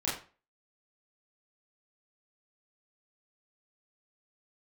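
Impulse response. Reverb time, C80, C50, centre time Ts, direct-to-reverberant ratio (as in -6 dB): 0.35 s, 10.5 dB, 6.0 dB, 39 ms, -8.0 dB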